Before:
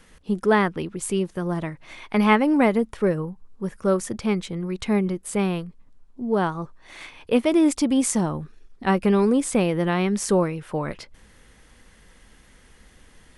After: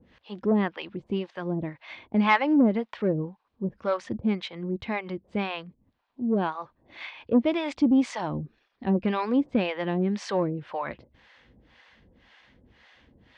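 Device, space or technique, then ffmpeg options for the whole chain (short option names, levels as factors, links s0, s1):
guitar amplifier with harmonic tremolo: -filter_complex "[0:a]acrossover=split=560[s0][s1];[s0]aeval=exprs='val(0)*(1-1/2+1/2*cos(2*PI*1.9*n/s))':c=same[s2];[s1]aeval=exprs='val(0)*(1-1/2-1/2*cos(2*PI*1.9*n/s))':c=same[s3];[s2][s3]amix=inputs=2:normalize=0,asoftclip=type=tanh:threshold=0.2,highpass=82,equalizer=f=170:t=q:w=4:g=-6,equalizer=f=420:t=q:w=4:g=-6,equalizer=f=1300:t=q:w=4:g=-5,lowpass=f=4100:w=0.5412,lowpass=f=4100:w=1.3066,volume=1.58"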